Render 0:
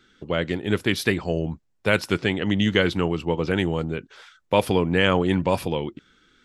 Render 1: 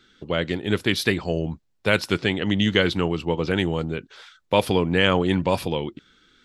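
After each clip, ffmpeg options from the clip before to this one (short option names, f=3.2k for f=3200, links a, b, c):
-af "equalizer=f=4k:w=1.7:g=4.5"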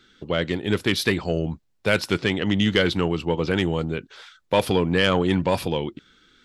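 -af "aeval=exprs='0.794*(cos(1*acos(clip(val(0)/0.794,-1,1)))-cos(1*PI/2))+0.0794*(cos(5*acos(clip(val(0)/0.794,-1,1)))-cos(5*PI/2))':c=same,volume=-2.5dB"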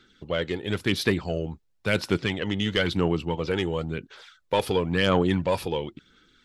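-af "aphaser=in_gain=1:out_gain=1:delay=2.4:decay=0.39:speed=0.97:type=sinusoidal,volume=-4.5dB"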